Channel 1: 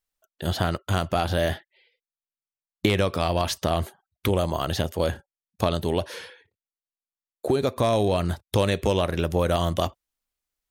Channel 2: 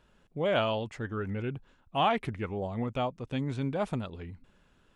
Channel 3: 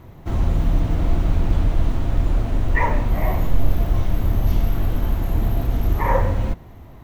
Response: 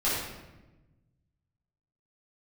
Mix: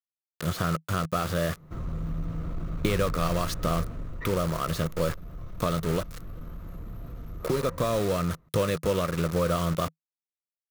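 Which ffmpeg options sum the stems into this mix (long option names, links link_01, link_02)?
-filter_complex "[0:a]acrusher=bits=4:mix=0:aa=0.000001,volume=-6.5dB[link_01];[2:a]asoftclip=type=tanh:threshold=-12dB,adelay=1450,volume=-13.5dB,afade=type=out:start_time=3.91:duration=0.39:silence=0.398107[link_02];[link_01][link_02]amix=inputs=2:normalize=0,equalizer=frequency=160:width_type=o:width=0.33:gain=11,equalizer=frequency=500:width_type=o:width=0.33:gain=6,equalizer=frequency=800:width_type=o:width=0.33:gain=-8,equalizer=frequency=1250:width_type=o:width=0.33:gain=11,equalizer=frequency=3150:width_type=o:width=0.33:gain=-3,acompressor=mode=upward:threshold=-32dB:ratio=2.5"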